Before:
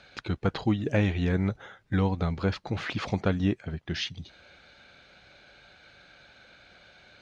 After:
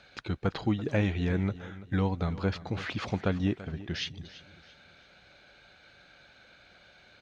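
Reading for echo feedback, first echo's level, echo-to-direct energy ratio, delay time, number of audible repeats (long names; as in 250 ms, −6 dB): 36%, −16.5 dB, −16.0 dB, 336 ms, 3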